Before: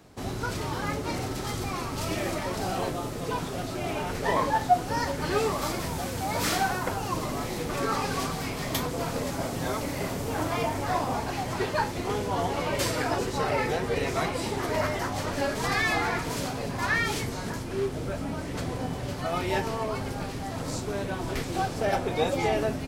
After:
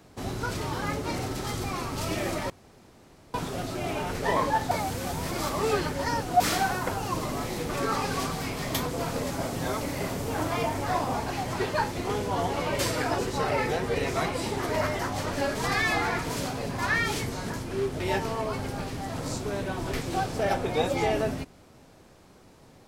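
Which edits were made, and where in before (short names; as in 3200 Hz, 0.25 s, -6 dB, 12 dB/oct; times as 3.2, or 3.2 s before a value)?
2.5–3.34 room tone
4.71–6.4 reverse
18–19.42 cut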